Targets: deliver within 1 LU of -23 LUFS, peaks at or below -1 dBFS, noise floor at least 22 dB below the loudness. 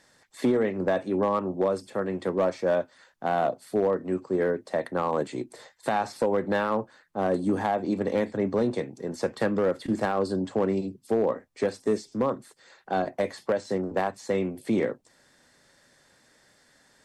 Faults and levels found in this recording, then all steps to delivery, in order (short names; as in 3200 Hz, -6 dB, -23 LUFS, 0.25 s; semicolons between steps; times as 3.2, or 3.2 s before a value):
clipped 0.7%; flat tops at -16.5 dBFS; loudness -28.0 LUFS; peak -16.5 dBFS; loudness target -23.0 LUFS
-> clip repair -16.5 dBFS; gain +5 dB